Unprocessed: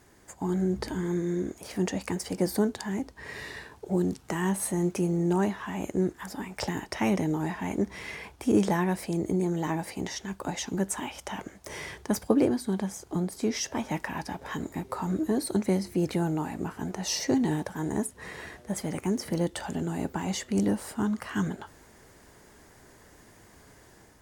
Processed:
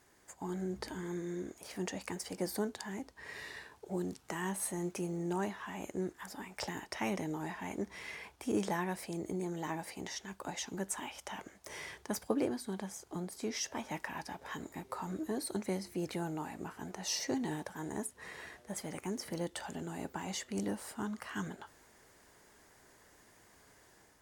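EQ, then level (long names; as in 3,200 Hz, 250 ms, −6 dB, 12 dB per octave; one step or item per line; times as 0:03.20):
low-shelf EQ 380 Hz −8 dB
−5.5 dB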